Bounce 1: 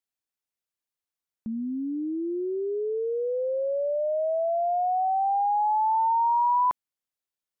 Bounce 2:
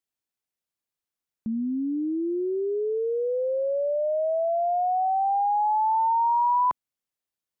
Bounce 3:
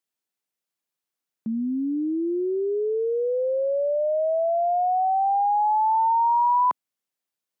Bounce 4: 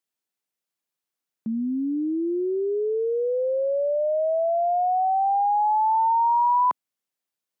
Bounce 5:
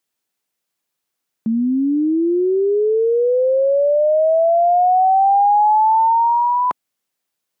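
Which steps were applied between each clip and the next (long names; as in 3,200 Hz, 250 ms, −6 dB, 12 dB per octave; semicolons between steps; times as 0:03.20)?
parametric band 160 Hz +3.5 dB 3 octaves
high-pass filter 150 Hz; level +2 dB
no processing that can be heard
dynamic equaliser 990 Hz, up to −6 dB, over −33 dBFS, Q 7.5; level +8.5 dB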